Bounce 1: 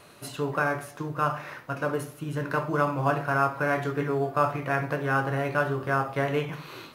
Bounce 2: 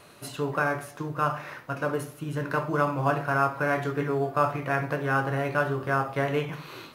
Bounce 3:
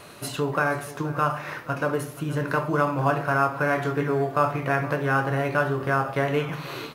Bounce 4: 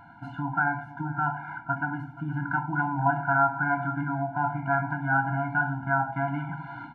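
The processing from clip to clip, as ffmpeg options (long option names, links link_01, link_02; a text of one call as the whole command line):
ffmpeg -i in.wav -af anull out.wav
ffmpeg -i in.wav -filter_complex "[0:a]asplit=2[link_01][link_02];[link_02]acompressor=threshold=-34dB:ratio=6,volume=1.5dB[link_03];[link_01][link_03]amix=inputs=2:normalize=0,aecho=1:1:477:0.126" out.wav
ffmpeg -i in.wav -af "lowpass=frequency=1200:width_type=q:width=3.6,afftfilt=real='re*eq(mod(floor(b*sr/1024/340),2),0)':imag='im*eq(mod(floor(b*sr/1024/340),2),0)':win_size=1024:overlap=0.75,volume=-3dB" out.wav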